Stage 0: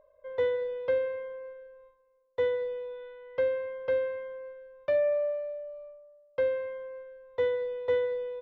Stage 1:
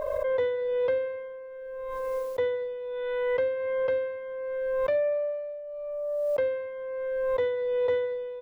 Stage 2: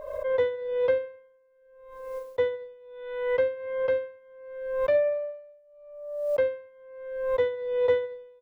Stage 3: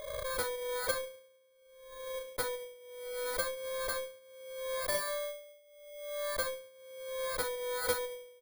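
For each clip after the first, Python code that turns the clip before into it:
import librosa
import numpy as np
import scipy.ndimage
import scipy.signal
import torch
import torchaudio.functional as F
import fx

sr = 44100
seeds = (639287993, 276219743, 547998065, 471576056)

y1 = fx.pre_swell(x, sr, db_per_s=20.0)
y2 = fx.upward_expand(y1, sr, threshold_db=-41.0, expansion=2.5)
y2 = F.gain(torch.from_numpy(y2), 5.0).numpy()
y3 = fx.bit_reversed(y2, sr, seeds[0], block=16)
y3 = fx.cheby_harmonics(y3, sr, harmonics=(3, 7, 8), levels_db=(-8, -17, -20), full_scale_db=-13.5)
y3 = F.gain(torch.from_numpy(y3), -5.0).numpy()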